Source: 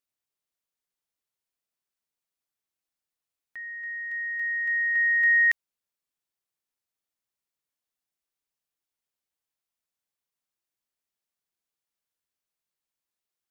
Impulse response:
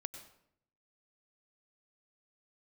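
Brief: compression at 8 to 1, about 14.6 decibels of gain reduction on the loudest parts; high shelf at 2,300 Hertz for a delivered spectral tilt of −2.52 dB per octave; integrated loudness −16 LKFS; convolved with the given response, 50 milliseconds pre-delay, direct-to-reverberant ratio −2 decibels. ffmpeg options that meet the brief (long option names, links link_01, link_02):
-filter_complex "[0:a]highshelf=frequency=2300:gain=-8,acompressor=threshold=-37dB:ratio=8,asplit=2[link_01][link_02];[1:a]atrim=start_sample=2205,adelay=50[link_03];[link_02][link_03]afir=irnorm=-1:irlink=0,volume=4.5dB[link_04];[link_01][link_04]amix=inputs=2:normalize=0,volume=24dB"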